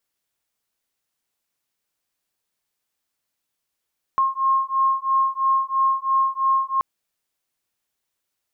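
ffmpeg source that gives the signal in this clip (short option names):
-f lavfi -i "aevalsrc='0.0944*(sin(2*PI*1070*t)+sin(2*PI*1073*t))':d=2.63:s=44100"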